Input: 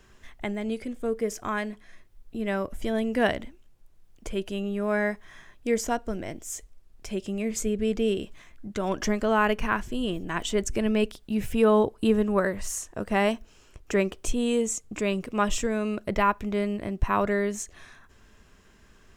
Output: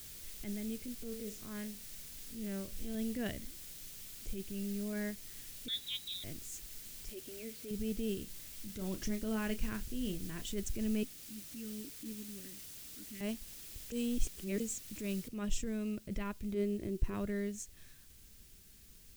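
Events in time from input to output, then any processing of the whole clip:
1.02–2.95 s: spectral blur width 82 ms
4.34–4.93 s: FFT filter 350 Hz 0 dB, 1.4 kHz -6 dB, 2.3 kHz 0 dB, 6.1 kHz -17 dB
5.68–6.24 s: frequency inversion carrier 3.9 kHz
7.09–7.71 s: brick-wall FIR band-pass 230–4900 Hz
8.23–10.52 s: doubling 32 ms -10 dB
11.03–13.21 s: talking filter i-u 1.4 Hz
13.92–14.60 s: reverse
15.28 s: noise floor step -40 dB -51 dB
16.54–17.14 s: peaking EQ 370 Hz +13 dB 0.47 oct
whole clip: bass shelf 100 Hz -10 dB; transient shaper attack -7 dB, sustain -2 dB; amplifier tone stack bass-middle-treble 10-0-1; trim +11 dB

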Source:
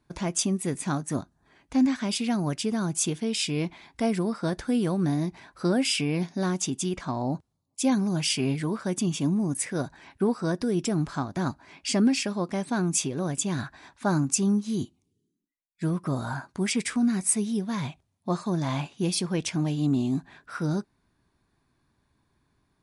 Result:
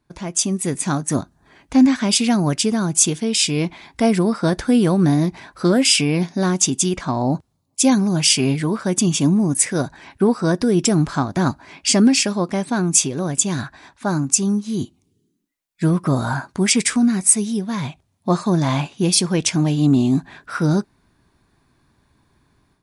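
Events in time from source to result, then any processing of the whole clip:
5.23–5.93 s: loudspeaker Doppler distortion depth 0.1 ms
whole clip: dynamic bell 7.3 kHz, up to +6 dB, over -41 dBFS, Q 0.79; level rider gain up to 10 dB

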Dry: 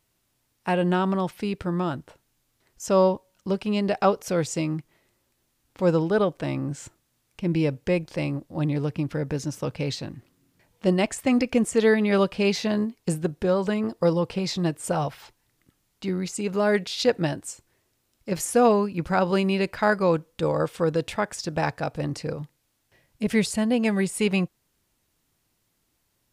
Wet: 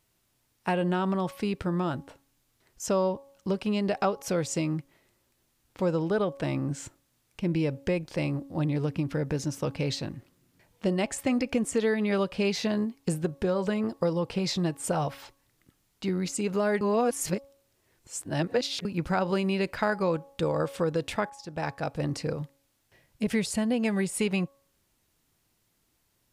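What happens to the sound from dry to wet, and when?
16.81–18.85 s: reverse
21.30–22.09 s: fade in, from -20 dB
whole clip: de-hum 277 Hz, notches 4; compression 3:1, threshold -24 dBFS

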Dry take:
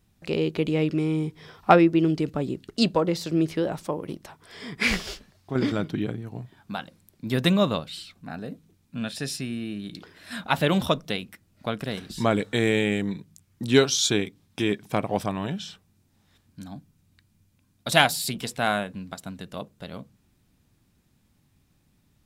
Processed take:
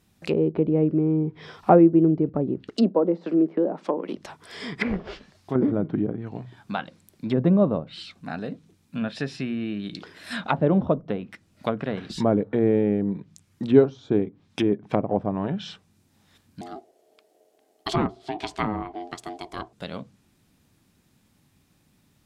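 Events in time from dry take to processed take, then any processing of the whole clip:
2.69–4.17 s: steep high-pass 190 Hz 48 dB/octave
16.61–19.73 s: ring modulator 530 Hz
whole clip: low-pass that closes with the level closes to 630 Hz, closed at -23 dBFS; bass shelf 80 Hz -10.5 dB; hum notches 60/120 Hz; trim +4.5 dB

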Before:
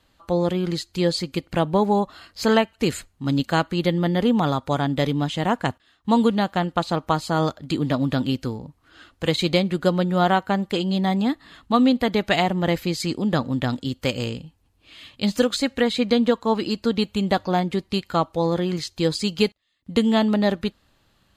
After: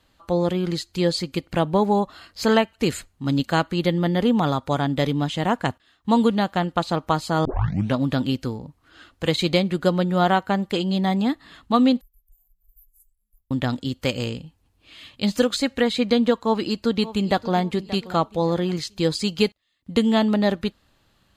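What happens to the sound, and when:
7.45 s: tape start 0.51 s
12.01–13.51 s: inverse Chebyshev band-stop 140–4500 Hz, stop band 70 dB
16.44–17.55 s: echo throw 580 ms, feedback 35%, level -16 dB

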